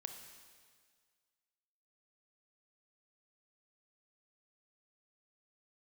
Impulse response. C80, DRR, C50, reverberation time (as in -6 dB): 8.0 dB, 5.5 dB, 6.5 dB, 1.8 s